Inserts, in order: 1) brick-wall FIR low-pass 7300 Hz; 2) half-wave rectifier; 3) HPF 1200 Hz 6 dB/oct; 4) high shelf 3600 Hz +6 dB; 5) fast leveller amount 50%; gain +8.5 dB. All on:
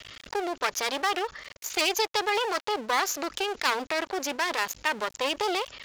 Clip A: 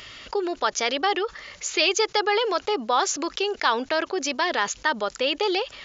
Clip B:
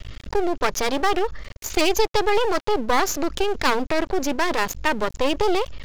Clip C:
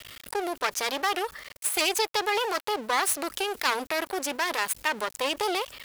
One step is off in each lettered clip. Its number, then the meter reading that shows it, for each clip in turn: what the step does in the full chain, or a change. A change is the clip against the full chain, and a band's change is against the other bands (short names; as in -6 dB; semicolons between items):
2, crest factor change -2.0 dB; 3, 250 Hz band +8.5 dB; 1, 8 kHz band +3.0 dB